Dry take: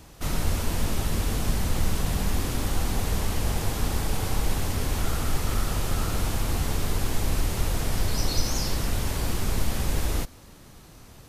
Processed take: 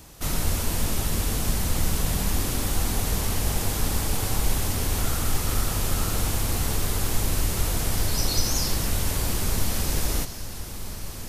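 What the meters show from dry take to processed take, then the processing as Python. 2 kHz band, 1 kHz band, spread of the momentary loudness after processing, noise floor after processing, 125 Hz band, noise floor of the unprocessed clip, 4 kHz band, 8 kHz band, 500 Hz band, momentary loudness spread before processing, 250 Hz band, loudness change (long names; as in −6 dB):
+1.5 dB, +0.5 dB, 2 LU, −35 dBFS, +0.5 dB, −49 dBFS, +3.5 dB, +6.0 dB, +0.5 dB, 1 LU, +0.5 dB, +2.0 dB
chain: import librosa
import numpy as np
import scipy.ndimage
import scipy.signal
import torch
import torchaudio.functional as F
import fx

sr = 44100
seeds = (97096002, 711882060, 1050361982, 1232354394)

p1 = fx.high_shelf(x, sr, hz=5400.0, db=8.0)
y = p1 + fx.echo_diffused(p1, sr, ms=1570, feedback_pct=40, wet_db=-11, dry=0)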